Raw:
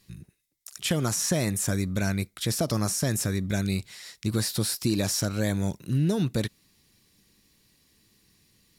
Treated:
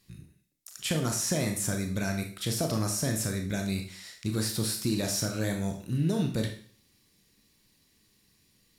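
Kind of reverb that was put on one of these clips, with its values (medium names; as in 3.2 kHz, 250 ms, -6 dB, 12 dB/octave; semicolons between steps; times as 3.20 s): Schroeder reverb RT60 0.46 s, combs from 25 ms, DRR 3.5 dB; trim -4 dB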